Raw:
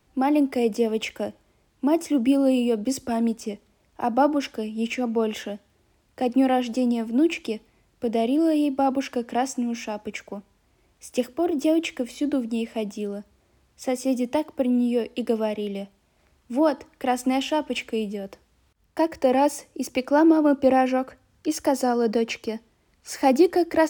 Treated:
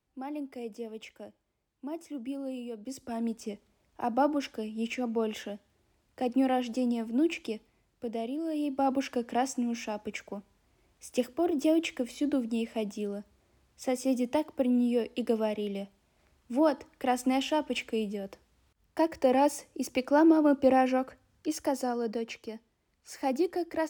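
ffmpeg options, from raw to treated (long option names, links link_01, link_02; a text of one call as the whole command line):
ffmpeg -i in.wav -af "volume=3dB,afade=type=in:start_time=2.8:duration=0.7:silence=0.298538,afade=type=out:start_time=7.5:duration=0.94:silence=0.421697,afade=type=in:start_time=8.44:duration=0.5:silence=0.334965,afade=type=out:start_time=21.02:duration=1.16:silence=0.473151" out.wav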